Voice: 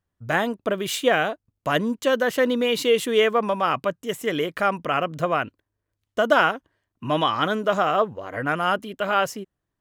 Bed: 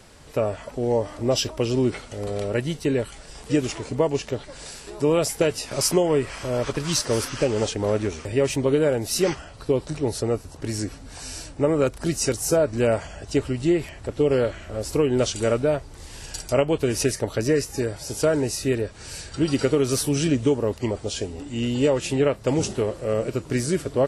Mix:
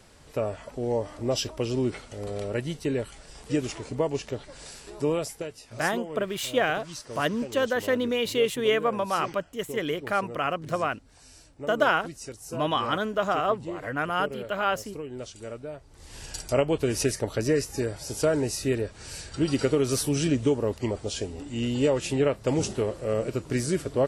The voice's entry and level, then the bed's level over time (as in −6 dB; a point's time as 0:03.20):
5.50 s, −4.5 dB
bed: 0:05.08 −5 dB
0:05.52 −16.5 dB
0:15.75 −16.5 dB
0:16.18 −3 dB